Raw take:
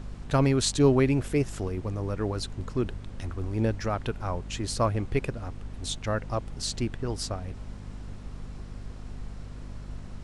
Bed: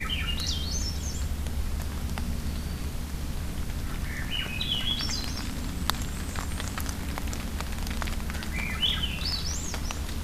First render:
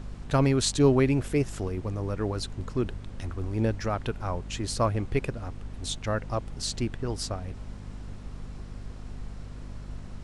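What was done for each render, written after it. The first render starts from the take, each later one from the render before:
no processing that can be heard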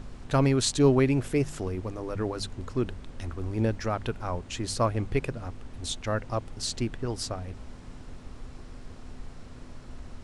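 hum removal 50 Hz, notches 4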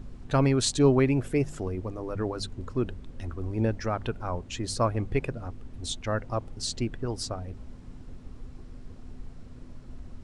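broadband denoise 8 dB, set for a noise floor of −45 dBFS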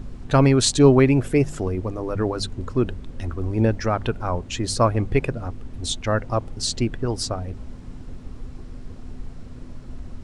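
level +7 dB

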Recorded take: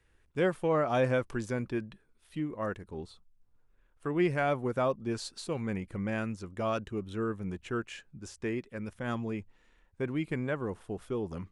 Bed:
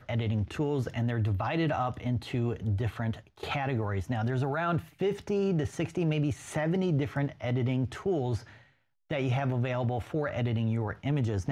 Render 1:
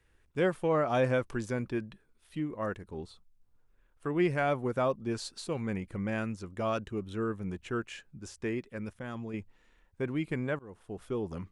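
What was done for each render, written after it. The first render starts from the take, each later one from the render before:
0:08.92–0:09.34: output level in coarse steps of 13 dB
0:10.59–0:11.11: fade in, from −22.5 dB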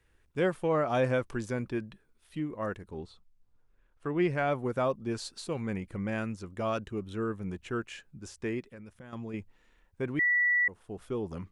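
0:02.99–0:04.53: high-frequency loss of the air 51 metres
0:08.60–0:09.13: downward compressor 5 to 1, threshold −44 dBFS
0:10.19–0:10.68: beep over 1,950 Hz −22.5 dBFS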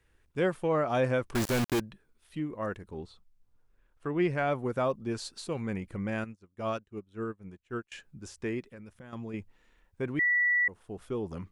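0:01.35–0:01.80: log-companded quantiser 2 bits
0:06.24–0:07.92: expander for the loud parts 2.5 to 1, over −46 dBFS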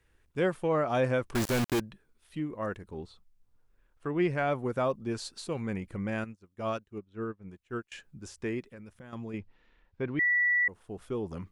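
0:06.98–0:07.48: high-frequency loss of the air 100 metres
0:09.38–0:10.63: low-pass filter 4,900 Hz 24 dB per octave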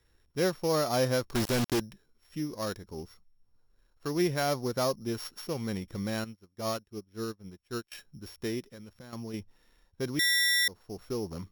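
samples sorted by size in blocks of 8 samples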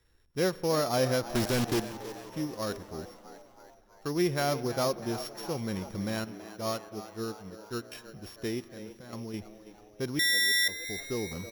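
echo with shifted repeats 325 ms, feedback 58%, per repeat +96 Hz, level −14 dB
spring reverb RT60 3.2 s, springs 42 ms, chirp 65 ms, DRR 17 dB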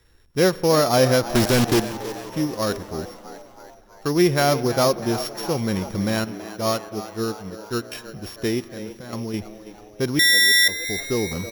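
level +10 dB

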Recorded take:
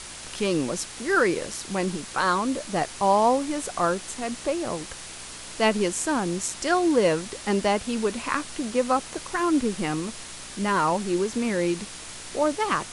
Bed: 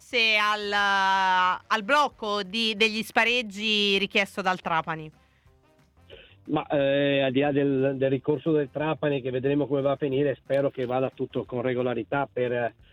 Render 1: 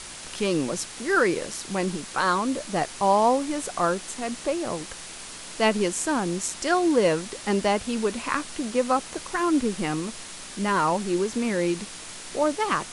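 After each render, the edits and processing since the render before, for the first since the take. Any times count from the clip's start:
hum removal 60 Hz, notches 2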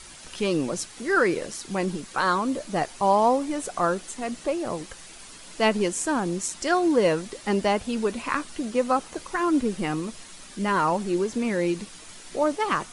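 broadband denoise 8 dB, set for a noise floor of −40 dBFS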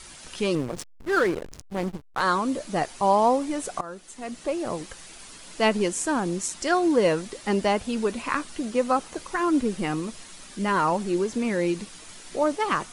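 0:00.55–0:02.21: slack as between gear wheels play −22.5 dBFS
0:03.81–0:04.62: fade in, from −19 dB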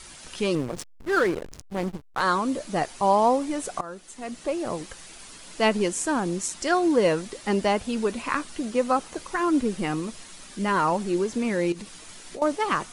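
0:11.72–0:12.42: downward compressor, threshold −33 dBFS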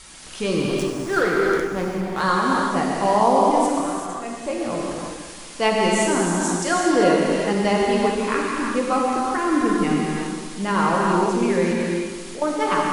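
delay with a low-pass on its return 174 ms, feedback 54%, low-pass 3,300 Hz, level −10.5 dB
reverb whose tail is shaped and stops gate 420 ms flat, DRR −3 dB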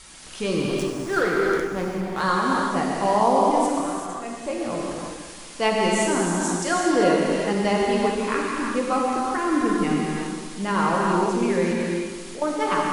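level −2 dB

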